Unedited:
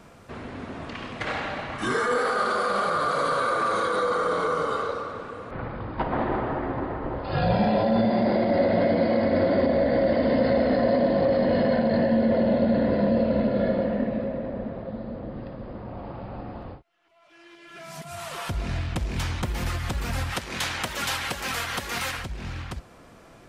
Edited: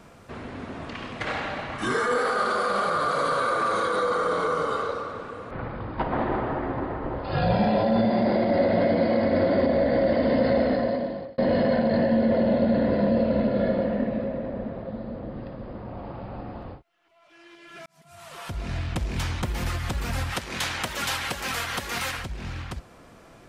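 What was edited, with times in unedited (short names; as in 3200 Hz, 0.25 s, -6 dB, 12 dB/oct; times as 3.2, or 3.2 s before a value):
10.62–11.38 fade out
17.86–18.9 fade in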